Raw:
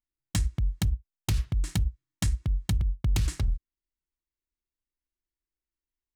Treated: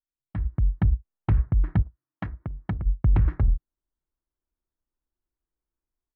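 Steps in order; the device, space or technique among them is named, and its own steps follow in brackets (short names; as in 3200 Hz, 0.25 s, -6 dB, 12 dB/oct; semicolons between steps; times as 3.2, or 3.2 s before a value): Wiener smoothing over 15 samples; 1.81–2.85 HPF 620 Hz -> 210 Hz 6 dB/oct; action camera in a waterproof case (LPF 1700 Hz 24 dB/oct; AGC gain up to 15 dB; gain -8.5 dB; AAC 96 kbps 24000 Hz)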